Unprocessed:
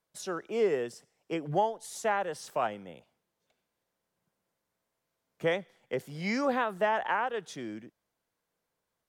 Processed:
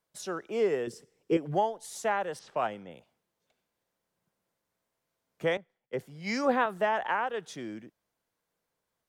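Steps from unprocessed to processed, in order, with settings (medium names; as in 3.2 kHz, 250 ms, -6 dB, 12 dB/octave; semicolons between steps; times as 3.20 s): 0.87–1.37 s: resonant low shelf 540 Hz +6 dB, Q 3; 2.39–2.91 s: level-controlled noise filter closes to 2.7 kHz, open at -27 dBFS; 5.57–6.66 s: three bands expanded up and down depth 100%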